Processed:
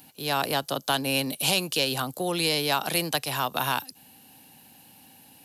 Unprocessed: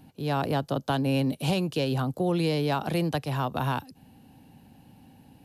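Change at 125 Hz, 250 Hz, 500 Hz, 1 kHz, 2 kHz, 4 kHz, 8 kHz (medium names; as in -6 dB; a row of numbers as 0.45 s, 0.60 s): -8.0 dB, -5.0 dB, -1.0 dB, +2.5 dB, +7.0 dB, +10.0 dB, +15.5 dB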